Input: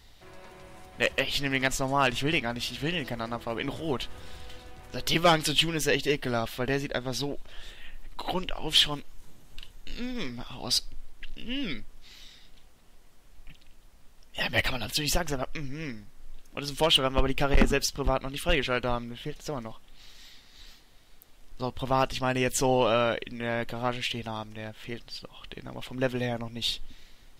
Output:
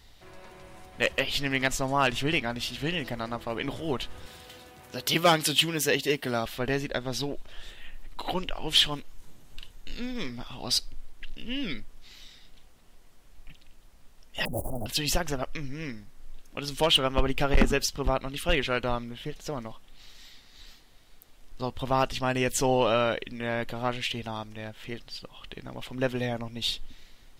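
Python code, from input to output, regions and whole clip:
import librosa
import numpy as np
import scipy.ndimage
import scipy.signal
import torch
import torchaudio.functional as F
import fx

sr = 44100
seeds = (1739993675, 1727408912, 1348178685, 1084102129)

y = fx.chain(x, sr, fx.highpass(hz=110.0, slope=12),
    fx.high_shelf(hz=11000.0, db=10.5), at=(4.26, 6.46))
y = fx.chain(y, sr, fx.dead_time(dead_ms=0.19),
    fx.ellip_bandstop(low_hz=720.0, high_hz=9600.0, order=3, stop_db=60),
    fx.env_flatten(amount_pct=50), at=(14.45, 14.86))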